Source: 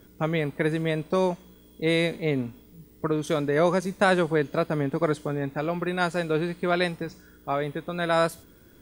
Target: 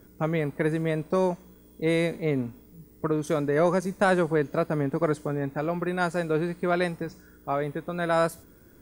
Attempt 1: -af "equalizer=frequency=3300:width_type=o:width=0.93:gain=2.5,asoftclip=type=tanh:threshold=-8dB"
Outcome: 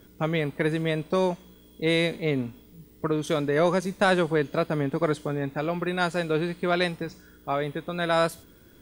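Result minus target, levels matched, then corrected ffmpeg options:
4,000 Hz band +8.0 dB
-af "equalizer=frequency=3300:width_type=o:width=0.93:gain=-8.5,asoftclip=type=tanh:threshold=-8dB"

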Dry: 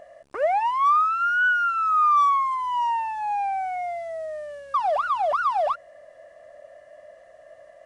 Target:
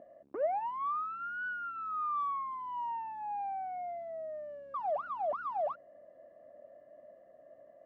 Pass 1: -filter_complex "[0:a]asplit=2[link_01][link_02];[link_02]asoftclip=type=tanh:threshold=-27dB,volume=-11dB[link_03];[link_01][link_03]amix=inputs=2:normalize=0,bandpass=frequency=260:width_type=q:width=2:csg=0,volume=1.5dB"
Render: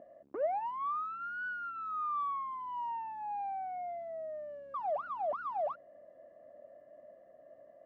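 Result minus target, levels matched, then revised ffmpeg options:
soft clipping: distortion +12 dB
-filter_complex "[0:a]asplit=2[link_01][link_02];[link_02]asoftclip=type=tanh:threshold=-16dB,volume=-11dB[link_03];[link_01][link_03]amix=inputs=2:normalize=0,bandpass=frequency=260:width_type=q:width=2:csg=0,volume=1.5dB"

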